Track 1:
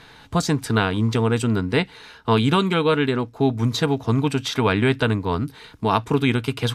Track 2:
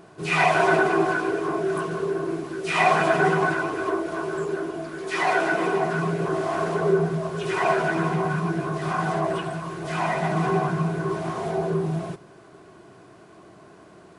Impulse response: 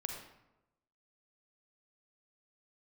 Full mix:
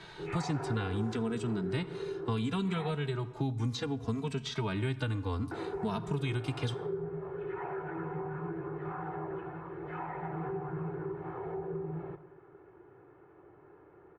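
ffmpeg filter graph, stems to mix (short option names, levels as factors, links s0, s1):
-filter_complex "[0:a]lowpass=f=9300:w=0.5412,lowpass=f=9300:w=1.3066,asplit=2[s0][s1];[s1]adelay=2.7,afreqshift=-0.66[s2];[s0][s2]amix=inputs=2:normalize=1,volume=0.75,asplit=2[s3][s4];[s4]volume=0.266[s5];[1:a]lowpass=f=1900:w=0.5412,lowpass=f=1900:w=1.3066,aecho=1:1:2.3:0.87,volume=0.224,asplit=3[s6][s7][s8];[s6]atrim=end=2.91,asetpts=PTS-STARTPTS,afade=t=out:st=2.906:d=0.004:c=hsin[s9];[s7]atrim=start=2.91:end=5.51,asetpts=PTS-STARTPTS,volume=0[s10];[s8]atrim=start=5.51,asetpts=PTS-STARTPTS,afade=t=in:d=0.004:c=hsin[s11];[s9][s10][s11]concat=n=3:v=0:a=1,asplit=2[s12][s13];[s13]volume=0.447[s14];[2:a]atrim=start_sample=2205[s15];[s5][s14]amix=inputs=2:normalize=0[s16];[s16][s15]afir=irnorm=-1:irlink=0[s17];[s3][s12][s17]amix=inputs=3:normalize=0,acrossover=split=190|6900[s18][s19][s20];[s18]acompressor=threshold=0.02:ratio=4[s21];[s19]acompressor=threshold=0.0141:ratio=4[s22];[s20]acompressor=threshold=0.001:ratio=4[s23];[s21][s22][s23]amix=inputs=3:normalize=0"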